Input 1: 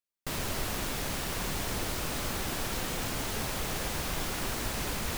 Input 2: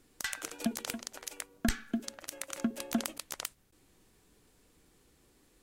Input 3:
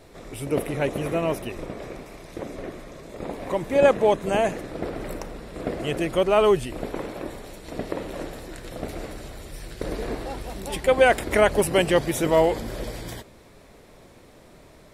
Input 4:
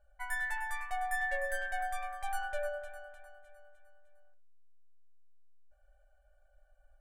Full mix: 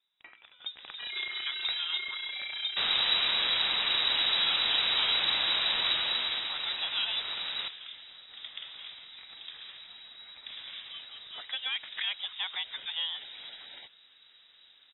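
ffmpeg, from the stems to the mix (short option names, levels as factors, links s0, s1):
-filter_complex "[0:a]adelay=2500,volume=0.562,afade=t=out:st=5.87:d=0.65:silence=0.398107[s0];[1:a]volume=0.178[s1];[2:a]acrossover=split=340|2200[s2][s3][s4];[s2]acompressor=threshold=0.00891:ratio=4[s5];[s3]acompressor=threshold=0.0891:ratio=4[s6];[s4]acompressor=threshold=0.0126:ratio=4[s7];[s5][s6][s7]amix=inputs=3:normalize=0,equalizer=f=470:t=o:w=0.61:g=-8,adelay=650,volume=0.119[s8];[3:a]alimiter=level_in=2.24:limit=0.0631:level=0:latency=1:release=61,volume=0.447,tremolo=f=30:d=0.889,asoftclip=type=hard:threshold=0.0112,adelay=800,volume=0.596[s9];[s0][s1][s8][s9]amix=inputs=4:normalize=0,dynaudnorm=f=100:g=13:m=3.55,lowpass=f=3300:t=q:w=0.5098,lowpass=f=3300:t=q:w=0.6013,lowpass=f=3300:t=q:w=0.9,lowpass=f=3300:t=q:w=2.563,afreqshift=-3900"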